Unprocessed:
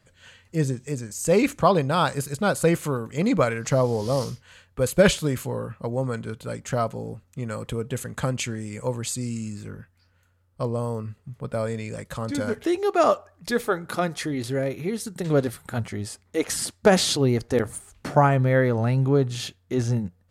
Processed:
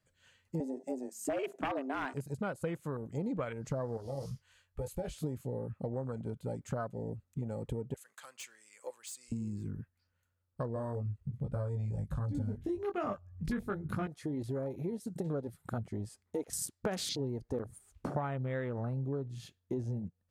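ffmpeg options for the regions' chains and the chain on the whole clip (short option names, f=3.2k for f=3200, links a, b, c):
-filter_complex "[0:a]asettb=1/sr,asplit=3[a][b][c];[a]atrim=end=0.604[d];[b]atrim=start=0.6:end=2.14,asetpts=PTS-STARTPTS,afade=t=in:d=0.004:c=qsin,afade=t=out:st=1.536:d=0.004:c=qsin,bandreject=f=265.9:t=h:w=4,bandreject=f=531.8:t=h:w=4,bandreject=f=797.7:t=h:w=4,bandreject=f=1.0636k:t=h:w=4,bandreject=f=1.3295k:t=h:w=4,bandreject=f=1.5954k:t=h:w=4,bandreject=f=1.8613k:t=h:w=4,afreqshift=130,aeval=exprs='0.224*(abs(mod(val(0)/0.224+3,4)-2)-1)':c=same[e];[c]atrim=start=2.136[f];[d][e]acrossfade=d=0.004:c1=hsin:c2=qsin[g];[g][f]acrossfade=d=0.004:c1=qsin:c2=hsin,asettb=1/sr,asplit=3[h][i][j];[h]atrim=end=3.974[k];[i]atrim=start=3.97:end=5.24,asetpts=PTS-STARTPTS,afade=t=in:d=0.004:c=qsin,afade=t=out:st=1.266:d=0.004:c=qsin,equalizer=f=260:w=0.63:g=-10.5,acompressor=threshold=-30dB:ratio=3:attack=3.2:release=140:knee=1:detection=peak,asplit=2[l][m];[m]adelay=22,volume=-9dB[n];[l][n]amix=inputs=2:normalize=0,atrim=end_sample=56007[o];[j]atrim=start=5.236[p];[k][o]acrossfade=d=0.004:c1=hsin:c2=qsin[q];[q][p]acrossfade=d=0.004:c1=qsin:c2=hsin,asettb=1/sr,asplit=3[r][s][t];[r]atrim=end=7.944[u];[s]atrim=start=7.94:end=9.32,asetpts=PTS-STARTPTS,afade=t=in:d=0.004:c=qsin,afade=t=out:st=1.376:d=0.004:c=qsin,highpass=1.1k,volume=26dB,asoftclip=hard,volume=-26dB[v];[t]atrim=start=9.316[w];[u][v]acrossfade=d=0.004:c1=hsin:c2=qsin[x];[x][w]acrossfade=d=0.004:c1=qsin:c2=hsin,asettb=1/sr,asplit=3[y][z][aa];[y]atrim=end=10.744[ab];[z]atrim=start=10.74:end=14.07,asetpts=PTS-STARTPTS,afade=t=in:d=0.004:c=qsin,afade=t=out:st=3.326:d=0.004:c=qsin,asubboost=boost=12:cutoff=170,asplit=2[ac][ad];[ad]adelay=20,volume=-3dB[ae];[ac][ae]amix=inputs=2:normalize=0,atrim=end_sample=146853[af];[aa]atrim=start=14.066[ag];[ab][af]acrossfade=d=0.004:c1=hsin:c2=qsin[ah];[ah][ag]acrossfade=d=0.004:c1=qsin:c2=hsin,highshelf=f=7.7k:g=5.5,afwtdn=0.0316,acompressor=threshold=-34dB:ratio=6"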